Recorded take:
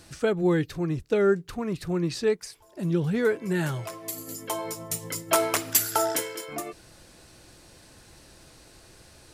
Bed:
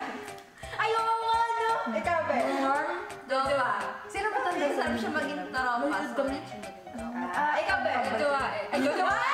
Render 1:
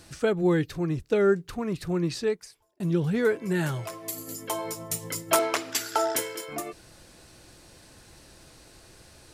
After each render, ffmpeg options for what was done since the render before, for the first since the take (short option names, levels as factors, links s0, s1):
-filter_complex "[0:a]asettb=1/sr,asplit=3[s0][s1][s2];[s0]atrim=end=5.394[s3];[s1]atrim=start=5.39:end=6.16,asetpts=PTS-STARTPTS,afade=t=in:d=0.004:c=qsin,afade=t=out:st=0.766:d=0.004:c=qsin,acrossover=split=220 6800:gain=0.224 1 0.178[s4][s5][s6];[s4][s5][s6]amix=inputs=3:normalize=0[s7];[s2]atrim=start=6.156[s8];[s3][s7]acrossfade=d=0.004:c1=hsin:c2=qsin[s9];[s9][s8]acrossfade=d=0.004:c1=qsin:c2=hsin,asplit=2[s10][s11];[s10]atrim=end=2.8,asetpts=PTS-STARTPTS,afade=t=out:st=2.1:d=0.7[s12];[s11]atrim=start=2.8,asetpts=PTS-STARTPTS,afade=t=in:d=0.004:c=hsin[s13];[s12][s13]concat=n=2:v=0:a=1"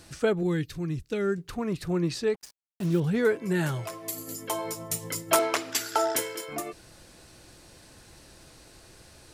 -filter_complex "[0:a]asettb=1/sr,asplit=3[s0][s1][s2];[s0]atrim=end=0.434[s3];[s1]atrim=start=0.43:end=1.38,asetpts=PTS-STARTPTS,afade=t=in:d=0.004:c=qsin,afade=t=out:st=0.946:d=0.004:c=qsin,equalizer=f=690:t=o:w=2.3:g=-10[s4];[s2]atrim=start=1.376[s5];[s3][s4]acrossfade=d=0.004:c1=hsin:c2=qsin[s6];[s6][s5]acrossfade=d=0.004:c1=qsin:c2=hsin,asettb=1/sr,asplit=3[s7][s8][s9];[s7]atrim=end=2.344[s10];[s8]atrim=start=2.34:end=3,asetpts=PTS-STARTPTS,afade=t=in:d=0.004:c=qsin,afade=t=out:st=0.656:d=0.004:c=qsin,acrusher=bits=6:mix=0:aa=0.5[s11];[s9]atrim=start=2.996[s12];[s10][s11]acrossfade=d=0.004:c1=hsin:c2=qsin[s13];[s13][s12]acrossfade=d=0.004:c1=qsin:c2=hsin"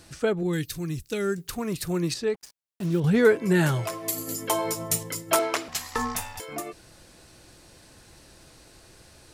-filter_complex "[0:a]asettb=1/sr,asplit=3[s0][s1][s2];[s0]atrim=end=0.534[s3];[s1]atrim=start=0.53:end=2.14,asetpts=PTS-STARTPTS,afade=t=in:d=0.004:c=qsin,afade=t=out:st=1.606:d=0.004:c=qsin,aemphasis=mode=production:type=75kf[s4];[s2]atrim=start=2.136[s5];[s3][s4]acrossfade=d=0.004:c1=hsin:c2=qsin[s6];[s6][s5]acrossfade=d=0.004:c1=qsin:c2=hsin,asettb=1/sr,asplit=3[s7][s8][s9];[s7]atrim=end=5.684[s10];[s8]atrim=start=5.68:end=6.4,asetpts=PTS-STARTPTS,afade=t=in:d=0.004:c=qsin,afade=t=out:st=0.716:d=0.004:c=qsin,aeval=exprs='val(0)*sin(2*PI*420*n/s)':c=same[s11];[s9]atrim=start=6.396[s12];[s10][s11]acrossfade=d=0.004:c1=hsin:c2=qsin[s13];[s13][s12]acrossfade=d=0.004:c1=qsin:c2=hsin,asplit=3[s14][s15][s16];[s14]atrim=end=3.042[s17];[s15]atrim=start=3.038:end=5.032,asetpts=PTS-STARTPTS,volume=1.88[s18];[s16]atrim=start=5.028[s19];[s17][s18]acrossfade=d=0.004:c1=hsin:c2=hsin[s20];[s20][s19]acrossfade=d=0.004:c1=hsin:c2=hsin"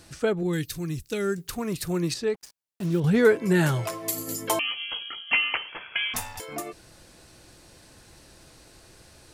-filter_complex "[0:a]asettb=1/sr,asplit=3[s0][s1][s2];[s0]atrim=end=4.594[s3];[s1]atrim=start=4.59:end=6.14,asetpts=PTS-STARTPTS,afade=t=in:d=0.004:c=qsin,afade=t=out:st=1.546:d=0.004:c=qsin,lowpass=f=2900:t=q:w=0.5098,lowpass=f=2900:t=q:w=0.6013,lowpass=f=2900:t=q:w=0.9,lowpass=f=2900:t=q:w=2.563,afreqshift=-3400[s4];[s2]atrim=start=6.136[s5];[s3][s4]acrossfade=d=0.004:c1=hsin:c2=qsin[s6];[s6][s5]acrossfade=d=0.004:c1=qsin:c2=hsin"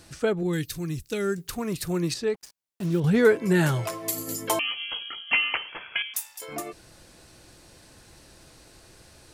-filter_complex "[0:a]asettb=1/sr,asplit=3[s0][s1][s2];[s0]atrim=end=6.024[s3];[s1]atrim=start=6.02:end=6.42,asetpts=PTS-STARTPTS,afade=t=in:d=0.004:c=qsin,afade=t=out:st=0.396:d=0.004:c=qsin,aderivative[s4];[s2]atrim=start=6.416[s5];[s3][s4]acrossfade=d=0.004:c1=hsin:c2=qsin[s6];[s6][s5]acrossfade=d=0.004:c1=qsin:c2=hsin"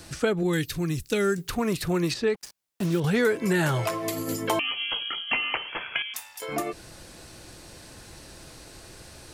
-filter_complex "[0:a]asplit=2[s0][s1];[s1]alimiter=limit=0.158:level=0:latency=1:release=200,volume=1[s2];[s0][s2]amix=inputs=2:normalize=0,acrossover=split=400|1100|3900[s3][s4][s5][s6];[s3]acompressor=threshold=0.0501:ratio=4[s7];[s4]acompressor=threshold=0.0398:ratio=4[s8];[s5]acompressor=threshold=0.0355:ratio=4[s9];[s6]acompressor=threshold=0.0126:ratio=4[s10];[s7][s8][s9][s10]amix=inputs=4:normalize=0"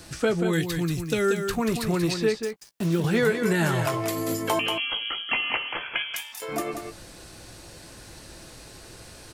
-filter_complex "[0:a]asplit=2[s0][s1];[s1]adelay=18,volume=0.266[s2];[s0][s2]amix=inputs=2:normalize=0,aecho=1:1:185:0.447"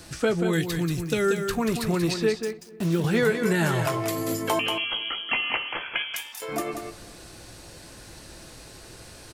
-filter_complex "[0:a]asplit=2[s0][s1];[s1]adelay=249,lowpass=f=1600:p=1,volume=0.106,asplit=2[s2][s3];[s3]adelay=249,lowpass=f=1600:p=1,volume=0.48,asplit=2[s4][s5];[s5]adelay=249,lowpass=f=1600:p=1,volume=0.48,asplit=2[s6][s7];[s7]adelay=249,lowpass=f=1600:p=1,volume=0.48[s8];[s0][s2][s4][s6][s8]amix=inputs=5:normalize=0"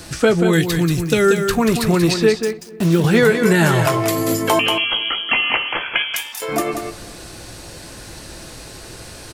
-af "volume=2.82,alimiter=limit=0.708:level=0:latency=1"